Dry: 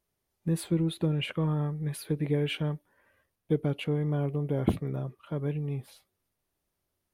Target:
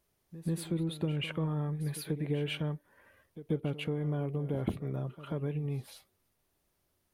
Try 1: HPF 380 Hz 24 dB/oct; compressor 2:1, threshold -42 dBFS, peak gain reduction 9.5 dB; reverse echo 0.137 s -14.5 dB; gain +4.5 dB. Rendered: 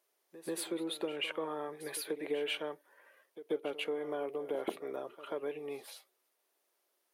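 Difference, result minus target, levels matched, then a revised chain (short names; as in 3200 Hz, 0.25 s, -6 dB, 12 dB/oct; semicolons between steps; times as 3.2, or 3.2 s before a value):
500 Hz band +5.5 dB
compressor 2:1, threshold -42 dBFS, peak gain reduction 12.5 dB; reverse echo 0.137 s -14.5 dB; gain +4.5 dB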